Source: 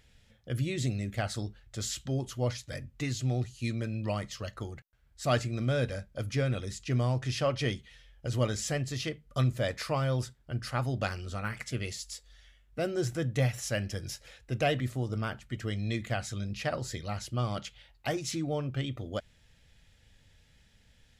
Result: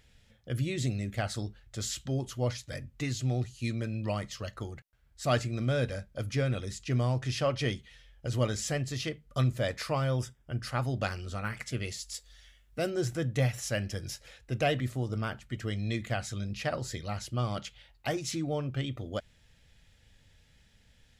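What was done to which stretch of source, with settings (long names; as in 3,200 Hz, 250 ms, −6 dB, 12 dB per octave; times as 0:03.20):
0:10.11–0:10.60: Butterworth band-reject 4,200 Hz, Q 4
0:12.14–0:12.90: high-shelf EQ 3,600 Hz +6.5 dB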